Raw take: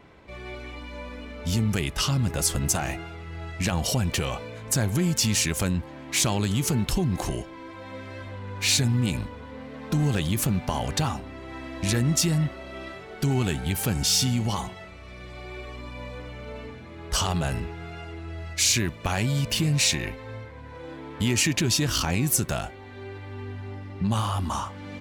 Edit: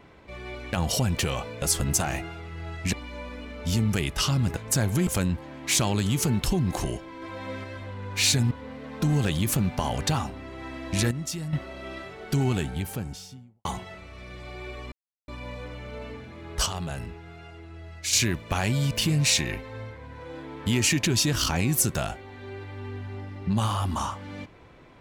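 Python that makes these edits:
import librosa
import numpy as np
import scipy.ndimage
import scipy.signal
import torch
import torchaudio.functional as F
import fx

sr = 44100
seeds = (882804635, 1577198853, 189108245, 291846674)

y = fx.studio_fade_out(x, sr, start_s=13.2, length_s=1.35)
y = fx.edit(y, sr, fx.swap(start_s=0.73, length_s=1.64, other_s=3.68, other_length_s=0.89),
    fx.cut(start_s=5.07, length_s=0.45),
    fx.clip_gain(start_s=7.67, length_s=0.42, db=3.5),
    fx.cut(start_s=8.96, length_s=0.45),
    fx.clip_gain(start_s=12.01, length_s=0.42, db=-10.0),
    fx.insert_silence(at_s=15.82, length_s=0.36),
    fx.clip_gain(start_s=17.2, length_s=1.47, db=-6.5), tone=tone)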